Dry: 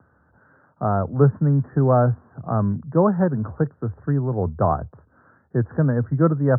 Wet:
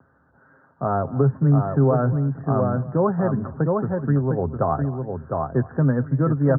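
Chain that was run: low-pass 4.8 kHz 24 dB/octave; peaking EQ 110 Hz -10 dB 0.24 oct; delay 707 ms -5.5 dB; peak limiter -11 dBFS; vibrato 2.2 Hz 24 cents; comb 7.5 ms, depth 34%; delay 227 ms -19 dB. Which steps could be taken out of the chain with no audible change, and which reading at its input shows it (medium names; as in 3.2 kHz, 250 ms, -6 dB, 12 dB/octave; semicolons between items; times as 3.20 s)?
low-pass 4.8 kHz: input has nothing above 1.4 kHz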